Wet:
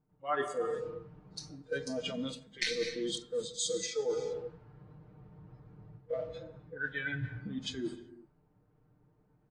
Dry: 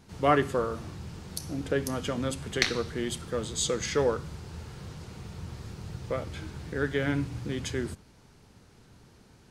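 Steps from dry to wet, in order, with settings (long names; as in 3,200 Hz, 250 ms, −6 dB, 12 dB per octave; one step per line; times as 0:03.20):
noise reduction from a noise print of the clip's start 22 dB
comb filter 6.6 ms, depth 84%
on a send at −13 dB: convolution reverb, pre-delay 7 ms
on the sum: low-pass that shuts in the quiet parts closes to 980 Hz, open at −25 dBFS
reversed playback
downward compressor 4 to 1, threshold −42 dBFS, peak gain reduction 21.5 dB
reversed playback
level +8 dB
AAC 32 kbit/s 22,050 Hz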